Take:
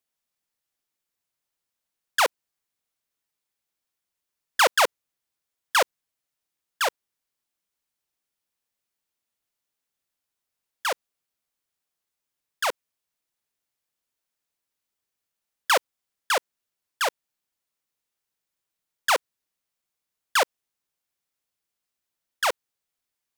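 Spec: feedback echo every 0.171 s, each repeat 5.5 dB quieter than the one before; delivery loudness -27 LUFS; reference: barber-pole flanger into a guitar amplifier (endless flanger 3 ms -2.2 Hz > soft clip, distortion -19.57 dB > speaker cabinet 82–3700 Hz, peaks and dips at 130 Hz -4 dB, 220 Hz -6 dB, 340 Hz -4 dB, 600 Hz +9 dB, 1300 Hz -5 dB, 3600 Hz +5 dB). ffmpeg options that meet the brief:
-filter_complex "[0:a]aecho=1:1:171|342|513|684|855|1026|1197:0.531|0.281|0.149|0.079|0.0419|0.0222|0.0118,asplit=2[a][b];[b]adelay=3,afreqshift=-2.2[c];[a][c]amix=inputs=2:normalize=1,asoftclip=threshold=-14dB,highpass=82,equalizer=f=130:t=q:w=4:g=-4,equalizer=f=220:t=q:w=4:g=-6,equalizer=f=340:t=q:w=4:g=-4,equalizer=f=600:t=q:w=4:g=9,equalizer=f=1.3k:t=q:w=4:g=-5,equalizer=f=3.6k:t=q:w=4:g=5,lowpass=f=3.7k:w=0.5412,lowpass=f=3.7k:w=1.3066,volume=2.5dB"

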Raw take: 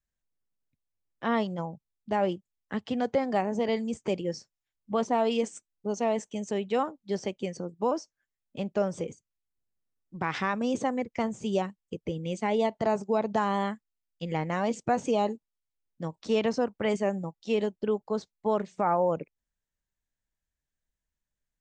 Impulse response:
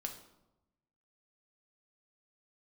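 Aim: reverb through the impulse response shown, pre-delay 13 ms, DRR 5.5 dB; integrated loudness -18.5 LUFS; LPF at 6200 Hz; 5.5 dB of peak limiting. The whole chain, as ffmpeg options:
-filter_complex "[0:a]lowpass=6.2k,alimiter=limit=-20dB:level=0:latency=1,asplit=2[a][b];[1:a]atrim=start_sample=2205,adelay=13[c];[b][c]afir=irnorm=-1:irlink=0,volume=-4.5dB[d];[a][d]amix=inputs=2:normalize=0,volume=12.5dB"

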